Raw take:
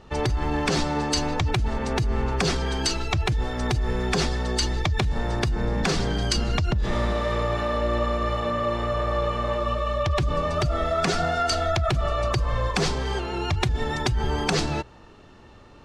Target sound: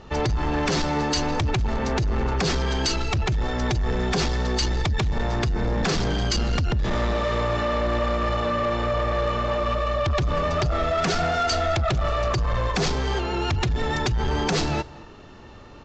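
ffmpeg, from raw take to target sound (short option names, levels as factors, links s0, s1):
-af "aresample=16000,asoftclip=type=tanh:threshold=0.0708,aresample=44100,aecho=1:1:213:0.075,volume=1.68"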